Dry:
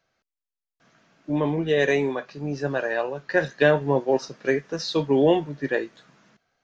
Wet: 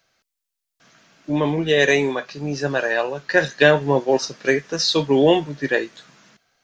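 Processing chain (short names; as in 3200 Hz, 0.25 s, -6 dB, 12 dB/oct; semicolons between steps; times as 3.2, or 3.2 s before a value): high shelf 2300 Hz +10 dB; gain +3 dB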